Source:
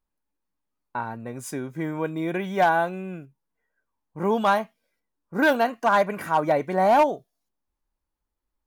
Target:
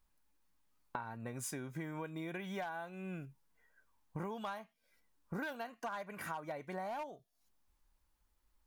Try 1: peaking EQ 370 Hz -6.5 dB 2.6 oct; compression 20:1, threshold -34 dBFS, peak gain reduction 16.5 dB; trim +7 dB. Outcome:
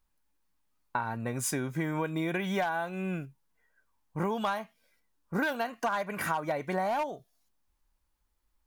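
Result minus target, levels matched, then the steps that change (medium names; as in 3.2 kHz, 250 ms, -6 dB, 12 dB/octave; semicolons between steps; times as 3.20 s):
compression: peak gain reduction -11.5 dB
change: compression 20:1, threshold -46 dBFS, peak gain reduction 28 dB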